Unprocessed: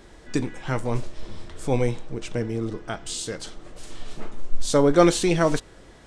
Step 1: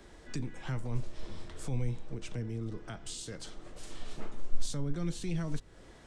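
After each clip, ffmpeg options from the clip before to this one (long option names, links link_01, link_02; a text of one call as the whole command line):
ffmpeg -i in.wav -filter_complex "[0:a]acrossover=split=210[link_01][link_02];[link_02]acompressor=threshold=-36dB:ratio=3[link_03];[link_01][link_03]amix=inputs=2:normalize=0,acrossover=split=230|1500[link_04][link_05][link_06];[link_05]alimiter=level_in=8dB:limit=-24dB:level=0:latency=1:release=29,volume=-8dB[link_07];[link_04][link_07][link_06]amix=inputs=3:normalize=0,volume=-5.5dB" out.wav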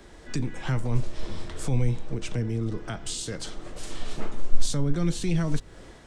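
ffmpeg -i in.wav -af "dynaudnorm=framelen=130:gausssize=5:maxgain=4dB,volume=5dB" out.wav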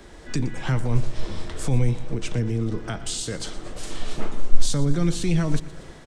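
ffmpeg -i in.wav -af "aecho=1:1:119|238|357|476|595:0.141|0.0763|0.0412|0.0222|0.012,volume=3.5dB" out.wav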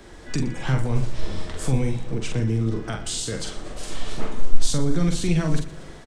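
ffmpeg -i in.wav -filter_complex "[0:a]asplit=2[link_01][link_02];[link_02]adelay=45,volume=-5dB[link_03];[link_01][link_03]amix=inputs=2:normalize=0" out.wav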